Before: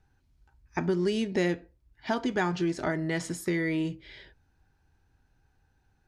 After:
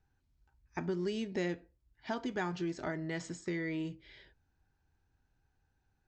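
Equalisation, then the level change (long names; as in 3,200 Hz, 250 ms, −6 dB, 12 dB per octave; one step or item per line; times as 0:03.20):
linear-phase brick-wall low-pass 8,300 Hz
−8.0 dB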